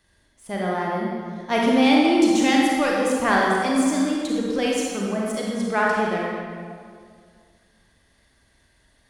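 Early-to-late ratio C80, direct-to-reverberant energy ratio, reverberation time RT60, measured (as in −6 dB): 0.5 dB, −3.0 dB, 2.1 s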